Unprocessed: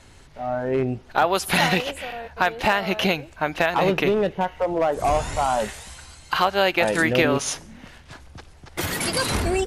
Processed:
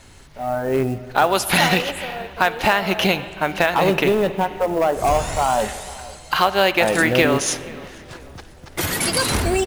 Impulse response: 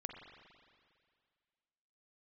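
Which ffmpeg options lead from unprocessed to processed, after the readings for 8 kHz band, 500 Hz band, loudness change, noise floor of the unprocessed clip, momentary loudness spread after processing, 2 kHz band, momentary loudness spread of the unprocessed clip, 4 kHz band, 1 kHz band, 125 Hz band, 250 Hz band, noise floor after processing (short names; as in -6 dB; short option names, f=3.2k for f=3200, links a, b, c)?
+5.5 dB, +3.0 dB, +3.0 dB, -49 dBFS, 16 LU, +3.0 dB, 12 LU, +3.5 dB, +3.0 dB, +3.0 dB, +3.0 dB, -43 dBFS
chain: -filter_complex "[0:a]asplit=2[a][b];[b]adelay=482,lowpass=f=2k:p=1,volume=-20.5dB,asplit=2[c][d];[d]adelay=482,lowpass=f=2k:p=1,volume=0.48,asplit=2[e][f];[f]adelay=482,lowpass=f=2k:p=1,volume=0.48,asplit=2[g][h];[h]adelay=482,lowpass=f=2k:p=1,volume=0.48[i];[a][c][e][g][i]amix=inputs=5:normalize=0,acrusher=bits=7:mode=log:mix=0:aa=0.000001,asplit=2[j][k];[1:a]atrim=start_sample=2205,highshelf=f=4.9k:g=10.5[l];[k][l]afir=irnorm=-1:irlink=0,volume=-4.5dB[m];[j][m]amix=inputs=2:normalize=0"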